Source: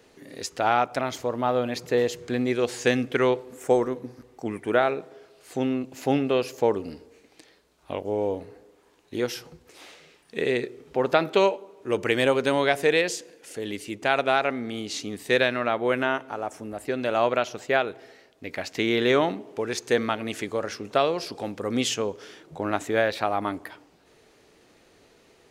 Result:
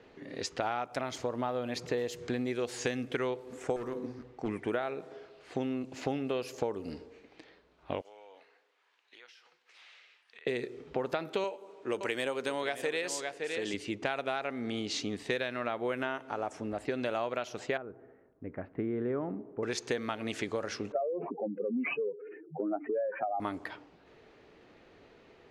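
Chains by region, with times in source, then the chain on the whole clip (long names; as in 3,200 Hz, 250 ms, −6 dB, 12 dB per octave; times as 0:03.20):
0:03.76–0:04.49: hum removal 63.36 Hz, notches 28 + hard clipping −24.5 dBFS
0:08.01–0:10.47: Bessel high-pass filter 2,000 Hz + downward compressor 10 to 1, threshold −48 dBFS
0:11.44–0:13.74: high-pass filter 300 Hz 6 dB per octave + parametric band 8,100 Hz +4.5 dB 0.34 octaves + single-tap delay 566 ms −13 dB
0:17.77–0:19.63: low-pass filter 1,300 Hz 24 dB per octave + parametric band 830 Hz −10.5 dB 1.9 octaves
0:20.92–0:23.40: expanding power law on the bin magnitudes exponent 3.1 + bad sample-rate conversion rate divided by 8×, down none, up filtered + elliptic high-pass filter 150 Hz
whole clip: low-pass that shuts in the quiet parts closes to 2,900 Hz, open at −21.5 dBFS; downward compressor 6 to 1, threshold −30 dBFS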